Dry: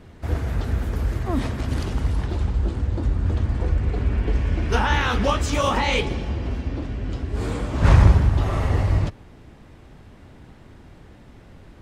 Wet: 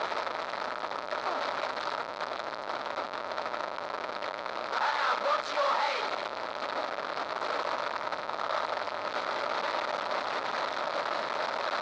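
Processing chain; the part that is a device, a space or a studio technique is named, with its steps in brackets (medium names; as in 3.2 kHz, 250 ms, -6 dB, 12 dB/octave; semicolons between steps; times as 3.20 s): home computer beeper (one-bit comparator; cabinet simulation 600–4600 Hz, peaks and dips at 600 Hz +10 dB, 930 Hz +6 dB, 1.3 kHz +9 dB, 2.9 kHz -6 dB, 4.1 kHz +4 dB); trim -8.5 dB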